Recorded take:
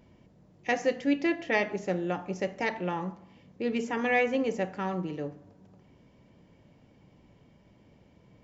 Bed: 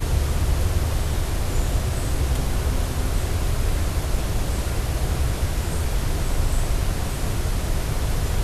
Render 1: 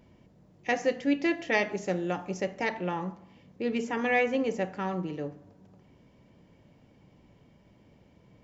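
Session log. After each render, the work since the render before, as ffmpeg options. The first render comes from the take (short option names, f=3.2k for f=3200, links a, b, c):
-filter_complex "[0:a]asettb=1/sr,asplit=3[a][b][c];[a]atrim=end=1.234[d];[b]atrim=start=1.23:end=2.41,asetpts=PTS-STARTPTS,afade=t=in:d=0.004:c=qsin,afade=t=out:st=1.176:d=0.004:c=qsin,highshelf=f=6k:g=9.5[e];[c]atrim=start=2.406[f];[d][e]acrossfade=d=0.004:c1=hsin:c2=qsin[g];[g][f]acrossfade=d=0.004:c1=qsin:c2=hsin"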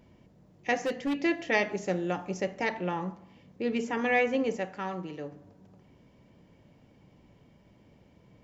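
-filter_complex "[0:a]asettb=1/sr,asplit=3[a][b][c];[a]atrim=end=0.764[d];[b]atrim=start=0.76:end=1.19,asetpts=PTS-STARTPTS,afade=t=in:d=0.004:c=qsin,afade=t=out:st=0.426:d=0.004:c=qsin,asoftclip=type=hard:threshold=-25.5dB[e];[c]atrim=start=1.186[f];[d][e]acrossfade=d=0.004:c1=hsin:c2=qsin[g];[g][f]acrossfade=d=0.004:c1=qsin:c2=hsin,asettb=1/sr,asplit=3[h][i][j];[h]atrim=end=4.564[k];[i]atrim=start=4.56:end=5.32,asetpts=PTS-STARTPTS,afade=t=in:d=0.004:c=qsin,afade=t=out:st=0.756:d=0.004:c=qsin,lowshelf=f=480:g=-6.5[l];[j]atrim=start=5.316[m];[k][l]acrossfade=d=0.004:c1=hsin:c2=qsin[n];[n][m]acrossfade=d=0.004:c1=qsin:c2=hsin"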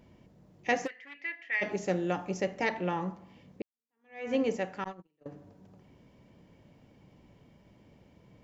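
-filter_complex "[0:a]asplit=3[a][b][c];[a]afade=t=out:st=0.86:d=0.02[d];[b]bandpass=f=2k:t=q:w=4.1,afade=t=in:st=0.86:d=0.02,afade=t=out:st=1.61:d=0.02[e];[c]afade=t=in:st=1.61:d=0.02[f];[d][e][f]amix=inputs=3:normalize=0,asettb=1/sr,asplit=3[g][h][i];[g]atrim=end=4.844[j];[h]atrim=start=4.84:end=5.26,asetpts=PTS-STARTPTS,afade=t=in:d=0.004:c=qsin,afade=t=out:st=0.416:d=0.004:c=qsin,agate=range=-38dB:threshold=-34dB:ratio=16:release=100:detection=peak[k];[i]atrim=start=5.256[l];[j][k]acrossfade=d=0.004:c1=hsin:c2=qsin[m];[m][l]acrossfade=d=0.004:c1=qsin:c2=hsin,asplit=2[n][o];[n]atrim=end=3.62,asetpts=PTS-STARTPTS,afade=t=out:st=3.616:d=0.004:c=hsin[p];[o]atrim=start=3.62,asetpts=PTS-STARTPTS,afade=t=in:d=0.7:c=exp[q];[p][q]concat=n=2:v=0:a=1"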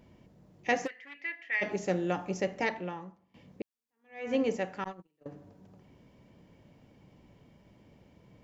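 -filter_complex "[0:a]asplit=2[a][b];[a]atrim=end=3.34,asetpts=PTS-STARTPTS,afade=t=out:st=2.63:d=0.71:c=qua:silence=0.125893[c];[b]atrim=start=3.34,asetpts=PTS-STARTPTS,afade=t=in:d=0.004:c=hsin:silence=0.125893[d];[c][d]concat=n=2:v=0:a=1"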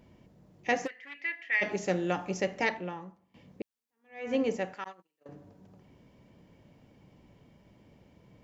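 -filter_complex "[0:a]asettb=1/sr,asplit=3[a][b][c];[a]atrim=end=1.034[d];[b]atrim=start=1.03:end=2.76,asetpts=PTS-STARTPTS,afade=t=in:d=0.004:c=qsin,afade=t=out:st=1.726:d=0.004:c=qsin,equalizer=f=3.6k:w=0.31:g=3.5[e];[c]atrim=start=2.756[f];[d][e]acrossfade=d=0.004:c1=hsin:c2=qsin[g];[g][f]acrossfade=d=0.004:c1=qsin:c2=hsin,asettb=1/sr,asplit=3[h][i][j];[h]atrim=end=4.744[k];[i]atrim=start=4.74:end=5.29,asetpts=PTS-STARTPTS,afade=t=in:d=0.004:c=qsin,afade=t=out:st=0.546:d=0.004:c=qsin,highpass=f=880:p=1[l];[j]atrim=start=5.286[m];[k][l]acrossfade=d=0.004:c1=hsin:c2=qsin[n];[n][m]acrossfade=d=0.004:c1=qsin:c2=hsin"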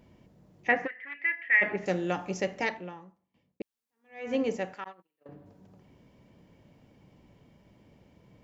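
-filter_complex "[0:a]asettb=1/sr,asplit=3[a][b][c];[a]atrim=end=0.684[d];[b]atrim=start=0.68:end=1.86,asetpts=PTS-STARTPTS,afade=t=in:d=0.004:c=qsin,afade=t=out:st=1.176:d=0.004:c=qsin,lowpass=f=1.9k:t=q:w=2.1[e];[c]atrim=start=1.856[f];[d][e]acrossfade=d=0.004:c1=hsin:c2=qsin[g];[g][f]acrossfade=d=0.004:c1=qsin:c2=hsin,asettb=1/sr,asplit=3[h][i][j];[h]atrim=end=4.804[k];[i]atrim=start=4.8:end=5.46,asetpts=PTS-STARTPTS,afade=t=in:d=0.004:c=qsin,afade=t=out:st=0.656:d=0.004:c=qsin,equalizer=f=6.2k:w=1.5:g=-13[l];[j]atrim=start=5.456[m];[k][l]acrossfade=d=0.004:c1=hsin:c2=qsin[n];[n][m]acrossfade=d=0.004:c1=qsin:c2=hsin,asplit=2[o][p];[o]atrim=end=3.6,asetpts=PTS-STARTPTS,afade=t=out:st=2.5:d=1.1[q];[p]atrim=start=3.6,asetpts=PTS-STARTPTS,afade=t=in:d=0.004:c=hsin[r];[q][r]concat=n=2:v=0:a=1"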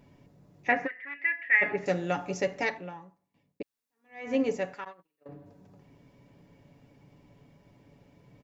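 -af "bandreject=f=3.1k:w=16,aecho=1:1:7.1:0.44"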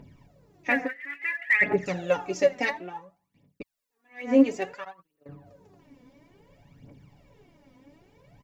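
-af "aphaser=in_gain=1:out_gain=1:delay=4.1:decay=0.71:speed=0.58:type=triangular"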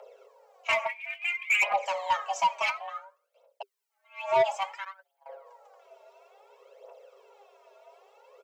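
-af "afreqshift=390,asoftclip=type=tanh:threshold=-17.5dB"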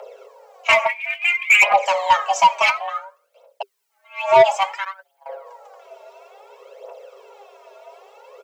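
-af "volume=11.5dB"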